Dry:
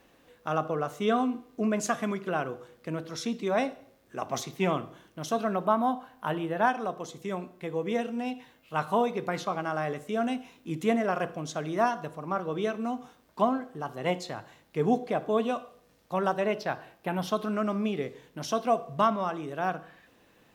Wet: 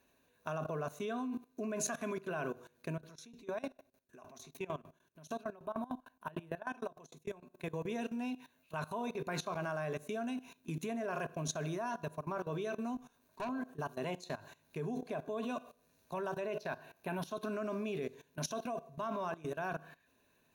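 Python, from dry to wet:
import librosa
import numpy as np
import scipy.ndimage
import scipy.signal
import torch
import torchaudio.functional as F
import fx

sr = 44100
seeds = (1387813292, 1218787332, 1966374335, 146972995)

y = fx.tremolo_decay(x, sr, direction='decaying', hz=6.6, depth_db=22, at=(2.96, 7.52), fade=0.02)
y = fx.tube_stage(y, sr, drive_db=27.0, bias=0.75, at=(12.95, 13.49))
y = fx.ripple_eq(y, sr, per_octave=1.5, db=9)
y = fx.level_steps(y, sr, step_db=18)
y = fx.high_shelf(y, sr, hz=8100.0, db=8.5)
y = y * librosa.db_to_amplitude(-1.5)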